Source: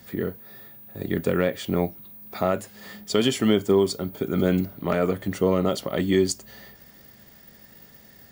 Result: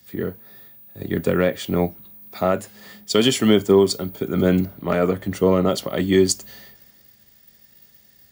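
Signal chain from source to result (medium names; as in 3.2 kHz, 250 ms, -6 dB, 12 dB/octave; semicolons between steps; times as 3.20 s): three bands expanded up and down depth 40%; trim +3.5 dB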